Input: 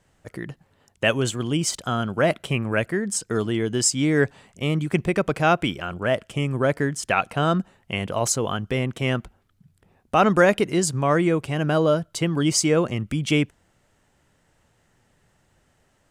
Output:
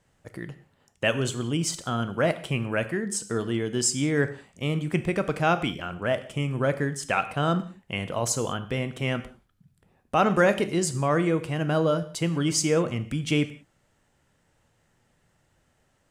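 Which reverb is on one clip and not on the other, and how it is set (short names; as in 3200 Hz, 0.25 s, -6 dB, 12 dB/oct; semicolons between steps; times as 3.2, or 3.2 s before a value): non-linear reverb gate 0.22 s falling, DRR 10 dB; gain -4 dB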